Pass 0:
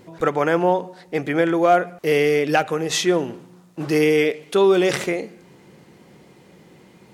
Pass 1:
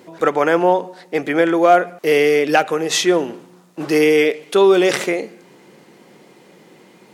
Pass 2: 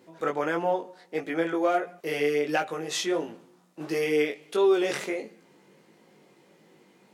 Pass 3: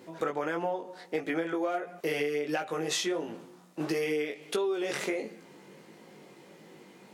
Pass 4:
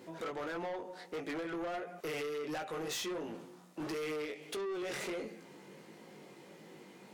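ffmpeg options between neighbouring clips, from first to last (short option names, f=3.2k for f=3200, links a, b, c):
-af "highpass=230,volume=4dB"
-af "flanger=delay=18:depth=2.8:speed=1.5,volume=-8.5dB"
-af "acompressor=threshold=-33dB:ratio=10,volume=5.5dB"
-af "asoftclip=type=tanh:threshold=-34dB,volume=-1.5dB"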